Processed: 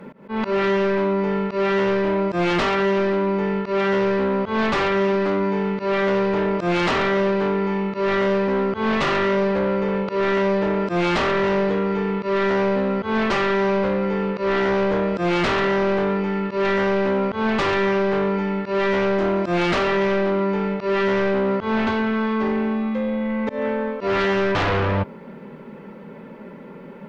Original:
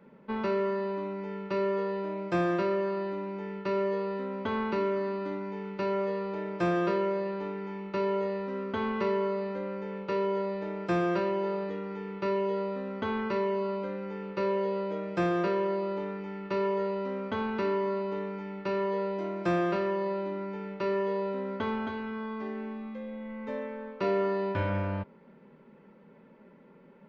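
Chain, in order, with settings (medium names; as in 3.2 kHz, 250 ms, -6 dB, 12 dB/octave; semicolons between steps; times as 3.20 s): slow attack 183 ms; sine folder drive 13 dB, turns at -17 dBFS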